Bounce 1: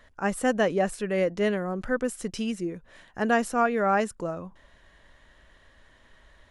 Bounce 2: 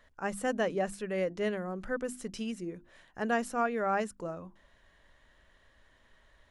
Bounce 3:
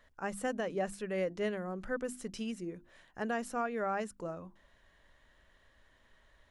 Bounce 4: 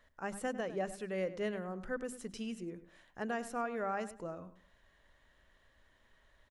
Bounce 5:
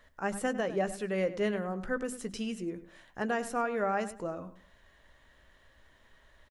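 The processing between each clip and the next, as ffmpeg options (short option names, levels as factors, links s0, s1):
-af "bandreject=f=50:t=h:w=6,bandreject=f=100:t=h:w=6,bandreject=f=150:t=h:w=6,bandreject=f=200:t=h:w=6,bandreject=f=250:t=h:w=6,bandreject=f=300:t=h:w=6,bandreject=f=350:t=h:w=6,volume=0.473"
-af "alimiter=limit=0.075:level=0:latency=1:release=202,volume=0.794"
-filter_complex "[0:a]asplit=2[s0][s1];[s1]adelay=101,lowpass=f=3300:p=1,volume=0.211,asplit=2[s2][s3];[s3]adelay=101,lowpass=f=3300:p=1,volume=0.26,asplit=2[s4][s5];[s5]adelay=101,lowpass=f=3300:p=1,volume=0.26[s6];[s0][s2][s4][s6]amix=inputs=4:normalize=0,volume=0.75"
-filter_complex "[0:a]asplit=2[s0][s1];[s1]adelay=15,volume=0.224[s2];[s0][s2]amix=inputs=2:normalize=0,volume=2"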